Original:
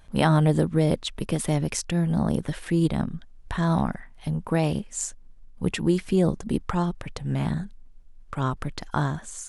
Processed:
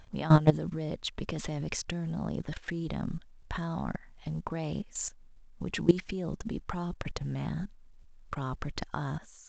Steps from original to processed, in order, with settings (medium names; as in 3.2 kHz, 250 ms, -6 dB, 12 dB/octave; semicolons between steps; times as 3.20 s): level held to a coarse grid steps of 18 dB; trim +2.5 dB; µ-law 128 kbps 16 kHz